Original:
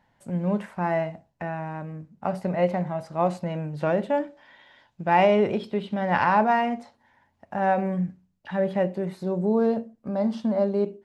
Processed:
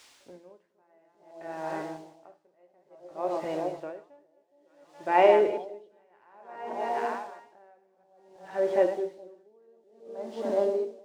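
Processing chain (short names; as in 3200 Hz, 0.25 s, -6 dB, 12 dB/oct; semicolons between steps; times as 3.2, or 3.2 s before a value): reverse delay 0.164 s, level -6.5 dB; resonant low shelf 260 Hz -9.5 dB, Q 3; de-hum 85.48 Hz, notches 36; added noise blue -42 dBFS; air absorption 110 m; echo with dull and thin repeats by turns 0.416 s, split 810 Hz, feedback 57%, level -6 dB; dB-linear tremolo 0.57 Hz, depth 39 dB; gain -1.5 dB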